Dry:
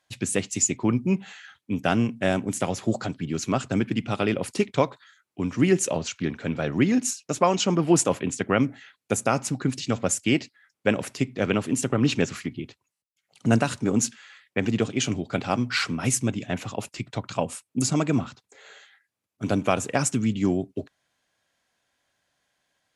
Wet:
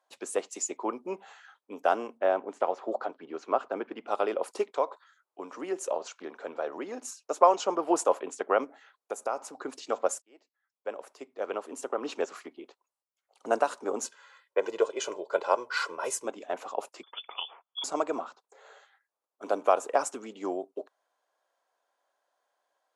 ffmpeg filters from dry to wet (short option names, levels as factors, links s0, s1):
-filter_complex "[0:a]asplit=3[s0][s1][s2];[s0]afade=t=out:st=2.17:d=0.02[s3];[s1]lowpass=3000,afade=t=in:st=2.17:d=0.02,afade=t=out:st=4.06:d=0.02[s4];[s2]afade=t=in:st=4.06:d=0.02[s5];[s3][s4][s5]amix=inputs=3:normalize=0,asettb=1/sr,asplit=3[s6][s7][s8];[s6]atrim=end=4.764[s9];[s7]atrim=start=4.76:end=7.17,asetpts=PTS-STARTPTS,afade=t=in:d=0.004:c=qsin,afade=t=out:st=2.406:d=0.004:c=qsin,acompressor=threshold=0.0355:ratio=1.5:attack=3.2:release=140:knee=1:detection=peak[s10];[s8]atrim=start=7.166[s11];[s9][s10]acrossfade=d=0.004:c1=hsin:c2=qsin[s12];[s12][s11]acrossfade=d=0.004:c1=qsin:c2=hsin,asettb=1/sr,asplit=3[s13][s14][s15];[s13]atrim=end=8.644[s16];[s14]atrim=start=8.64:end=9.63,asetpts=PTS-STARTPTS,afade=t=in:d=0.004:c=qsin,afade=t=out:st=0.986:d=0.004:c=qsin,acompressor=threshold=0.0316:ratio=2:attack=3.2:release=140:knee=1:detection=peak[s17];[s15]atrim=start=9.626[s18];[s16][s17]acrossfade=d=0.004:c1=hsin:c2=qsin[s19];[s19][s18]acrossfade=d=0.004:c1=qsin:c2=hsin,asettb=1/sr,asplit=3[s20][s21][s22];[s20]atrim=end=14.054[s23];[s21]atrim=start=14.05:end=16.25,asetpts=PTS-STARTPTS,afade=t=in:d=0.004:c=qsin,afade=t=out:st=2.196:d=0.004:c=qsin,aecho=1:1:2:0.75,atrim=end_sample=97020[s24];[s22]atrim=start=16.246[s25];[s23][s24]acrossfade=d=0.004:c1=hsin:c2=qsin[s26];[s26][s25]acrossfade=d=0.004:c1=qsin:c2=hsin,asettb=1/sr,asplit=3[s27][s28][s29];[s27]atrim=end=17.034[s30];[s28]atrim=start=17.03:end=17.84,asetpts=PTS-STARTPTS,afade=t=in:d=0.004:c=qsin,afade=t=out:st=0.806:d=0.004:c=qsin,lowpass=f=3100:t=q:w=0.5098,lowpass=f=3100:t=q:w=0.6013,lowpass=f=3100:t=q:w=0.9,lowpass=f=3100:t=q:w=2.563,afreqshift=-3600[s31];[s29]atrim=start=17.836[s32];[s30][s31]acrossfade=d=0.004:c1=hsin:c2=qsin[s33];[s33][s32]acrossfade=d=0.004:c1=qsin:c2=hsin,asplit=2[s34][s35];[s34]atrim=end=10.22,asetpts=PTS-STARTPTS,afade=t=out:st=10.216:d=0.004:c=hsin[s36];[s35]atrim=start=10.22,asetpts=PTS-STARTPTS,afade=t=in:d=2.38[s37];[s36][s37]concat=n=2:v=0:a=1,highpass=f=430:w=0.5412,highpass=f=430:w=1.3066,highshelf=f=1500:t=q:w=1.5:g=-10"